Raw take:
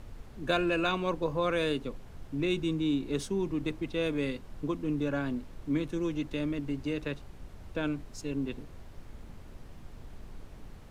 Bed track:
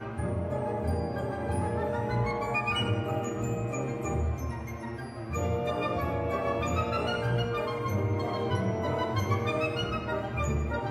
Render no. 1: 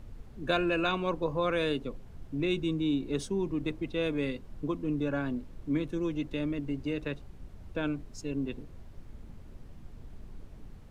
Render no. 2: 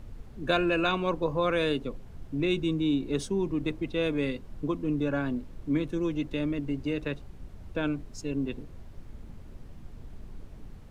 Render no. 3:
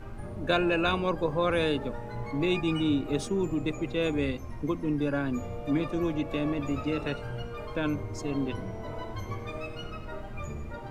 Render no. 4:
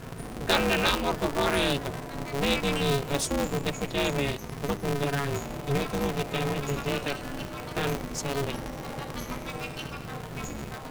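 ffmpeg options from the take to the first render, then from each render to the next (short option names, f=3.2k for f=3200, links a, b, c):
-af "afftdn=nr=6:nf=-49"
-af "volume=2.5dB"
-filter_complex "[1:a]volume=-9dB[a];[0:a][a]amix=inputs=2:normalize=0"
-af "crystalizer=i=3:c=0,aeval=exprs='val(0)*sgn(sin(2*PI*140*n/s))':c=same"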